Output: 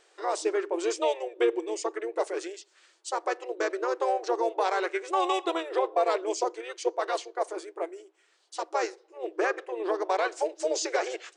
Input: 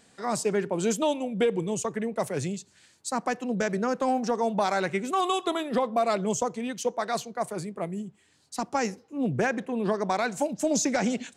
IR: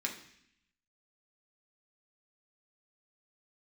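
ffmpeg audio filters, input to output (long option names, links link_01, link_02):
-filter_complex "[0:a]asplit=2[link_01][link_02];[link_02]asetrate=33038,aresample=44100,atempo=1.33484,volume=-5dB[link_03];[link_01][link_03]amix=inputs=2:normalize=0,highshelf=frequency=6300:gain=-8.5,afftfilt=real='re*between(b*sr/4096,320,10000)':imag='im*between(b*sr/4096,320,10000)':win_size=4096:overlap=0.75,volume=-1dB"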